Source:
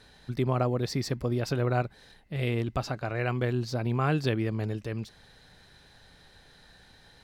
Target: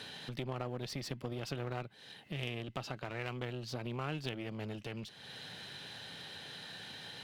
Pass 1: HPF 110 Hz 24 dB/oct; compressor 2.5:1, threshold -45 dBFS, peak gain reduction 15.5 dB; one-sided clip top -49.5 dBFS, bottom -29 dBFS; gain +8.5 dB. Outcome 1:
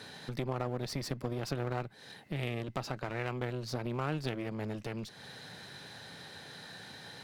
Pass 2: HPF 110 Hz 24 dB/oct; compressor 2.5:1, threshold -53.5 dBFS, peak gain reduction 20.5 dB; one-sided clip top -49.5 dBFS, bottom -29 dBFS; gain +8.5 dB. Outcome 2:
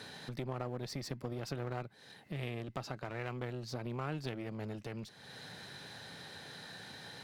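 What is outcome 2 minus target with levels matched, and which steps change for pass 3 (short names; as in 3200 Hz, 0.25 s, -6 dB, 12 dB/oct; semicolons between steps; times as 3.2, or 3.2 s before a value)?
4000 Hz band -3.5 dB
add after HPF: bell 3000 Hz +10.5 dB 0.56 oct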